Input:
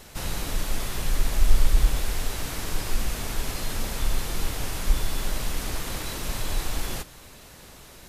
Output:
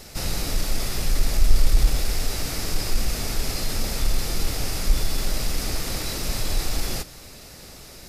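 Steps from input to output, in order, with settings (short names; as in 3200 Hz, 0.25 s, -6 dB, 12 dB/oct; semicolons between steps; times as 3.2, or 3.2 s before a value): thirty-one-band EQ 1000 Hz -7 dB, 1600 Hz -4 dB, 3150 Hz -4 dB, 5000 Hz +7 dB; in parallel at -5 dB: soft clip -19.5 dBFS, distortion -7 dB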